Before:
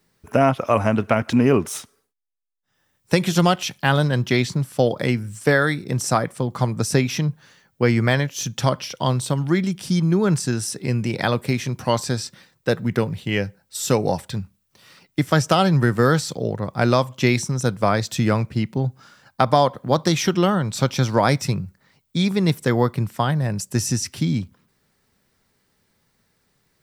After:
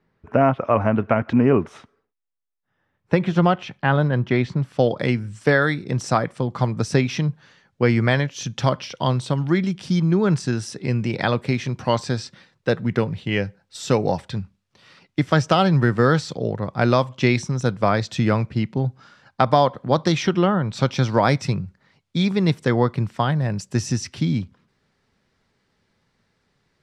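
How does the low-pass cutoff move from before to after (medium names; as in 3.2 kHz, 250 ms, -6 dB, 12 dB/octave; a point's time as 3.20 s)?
4.37 s 2 kHz
4.90 s 4.7 kHz
20.17 s 4.7 kHz
20.60 s 2 kHz
20.80 s 4.9 kHz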